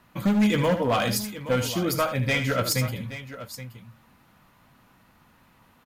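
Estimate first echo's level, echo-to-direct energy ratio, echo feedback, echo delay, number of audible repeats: -10.0 dB, -8.5 dB, no regular repeats, 76 ms, 2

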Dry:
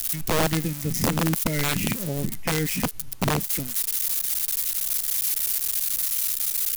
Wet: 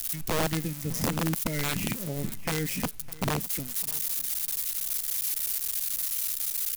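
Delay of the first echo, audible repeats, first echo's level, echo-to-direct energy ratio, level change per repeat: 608 ms, 2, -20.0 dB, -19.5 dB, -12.0 dB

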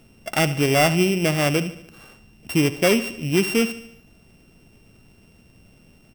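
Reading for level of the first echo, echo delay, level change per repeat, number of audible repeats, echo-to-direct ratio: -15.5 dB, 74 ms, -5.5 dB, 4, -14.0 dB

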